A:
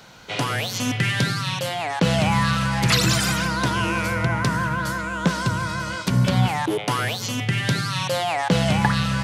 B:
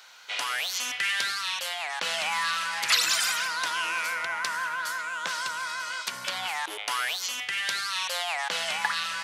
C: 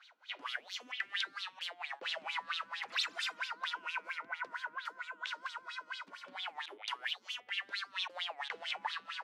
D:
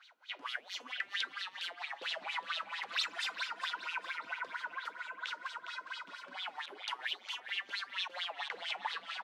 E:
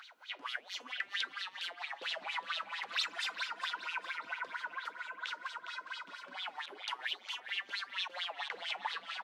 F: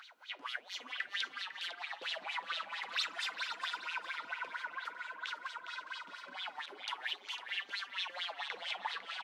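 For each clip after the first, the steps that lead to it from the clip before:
high-pass 1.2 kHz 12 dB/octave; trim -1.5 dB
wah-wah 4.4 Hz 250–3800 Hz, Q 5.4
feedback delay 408 ms, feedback 32%, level -10 dB
upward compressor, threshold -48 dBFS
delay 502 ms -12 dB; trim -1 dB

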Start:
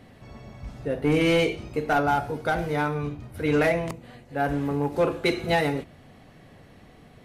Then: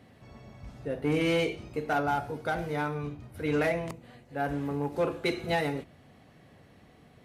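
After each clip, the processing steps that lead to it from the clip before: high-pass 50 Hz; trim -5.5 dB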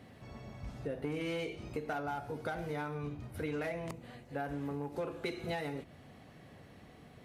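compression 6:1, threshold -36 dBFS, peak gain reduction 12.5 dB; trim +1 dB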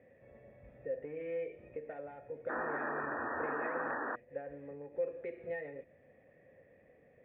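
cascade formant filter e; painted sound noise, 2.49–4.16 s, 220–1900 Hz -43 dBFS; trim +5 dB

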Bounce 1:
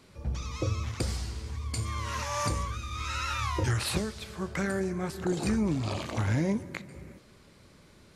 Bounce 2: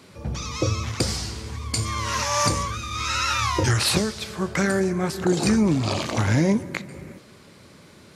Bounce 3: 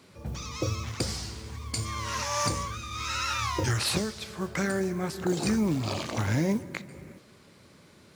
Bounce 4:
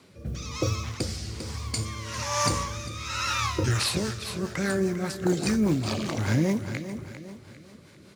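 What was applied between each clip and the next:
high-pass 100 Hz 12 dB/octave; dynamic bell 5.4 kHz, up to +5 dB, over -50 dBFS, Q 1.5; trim +8.5 dB
modulation noise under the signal 28 dB; trim -6.5 dB
feedback delay 399 ms, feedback 40%, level -11 dB; rotary cabinet horn 1.1 Hz, later 5 Hz, at 3.28 s; trim +3.5 dB

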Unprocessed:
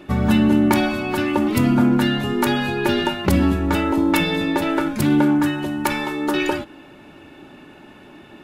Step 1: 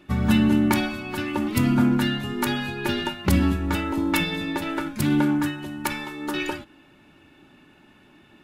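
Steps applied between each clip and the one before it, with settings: peaking EQ 540 Hz -6.5 dB 1.8 oct; upward expansion 1.5:1, over -30 dBFS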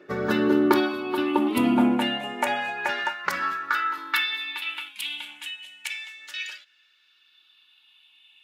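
drifting ripple filter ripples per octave 0.56, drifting -0.3 Hz, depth 9 dB; tone controls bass +7 dB, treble -8 dB; high-pass sweep 440 Hz -> 3.3 kHz, 1.82–5.19 s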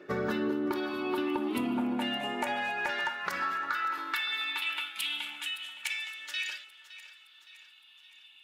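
compression 12:1, threshold -27 dBFS, peak gain reduction 14.5 dB; saturation -20 dBFS, distortion -22 dB; two-band feedback delay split 510 Hz, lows 189 ms, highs 565 ms, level -15.5 dB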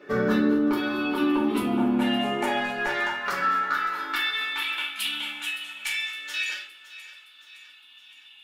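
reverberation RT60 0.40 s, pre-delay 4 ms, DRR -5 dB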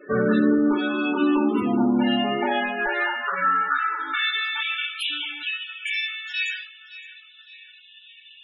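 loudest bins only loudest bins 32; trim +3 dB

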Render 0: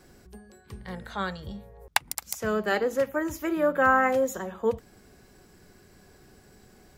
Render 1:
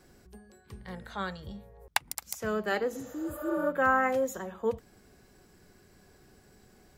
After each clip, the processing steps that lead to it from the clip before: spectral replace 2.97–3.64 s, 460–7400 Hz both; trim -4 dB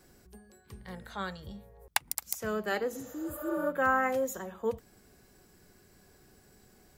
treble shelf 8.3 kHz +8 dB; trim -2 dB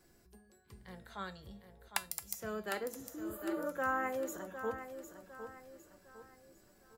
feedback comb 340 Hz, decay 0.24 s, harmonics all, mix 70%; on a send: feedback delay 756 ms, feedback 40%, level -10 dB; on the sum: trim +2 dB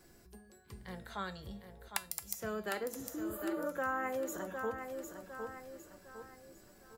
compression 2:1, threshold -42 dBFS, peak gain reduction 8 dB; trim +5 dB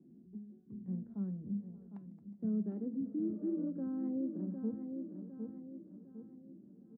Butterworth band-pass 220 Hz, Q 2; echo from a far wall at 99 m, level -18 dB; trim +11.5 dB

